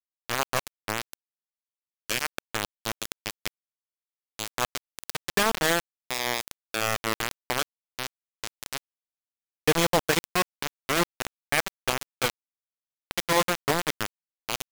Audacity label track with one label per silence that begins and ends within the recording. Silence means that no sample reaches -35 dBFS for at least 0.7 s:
1.130000	2.100000	silence
3.480000	4.390000	silence
8.780000	9.680000	silence
12.300000	13.110000	silence